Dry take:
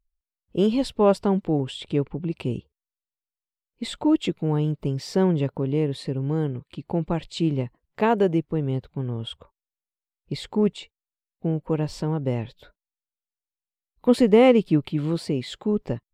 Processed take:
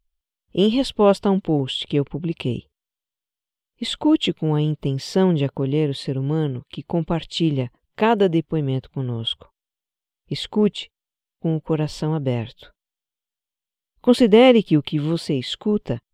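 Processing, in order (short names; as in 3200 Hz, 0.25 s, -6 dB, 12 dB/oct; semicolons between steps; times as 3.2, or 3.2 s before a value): bell 3200 Hz +8.5 dB 0.46 oct; gain +3 dB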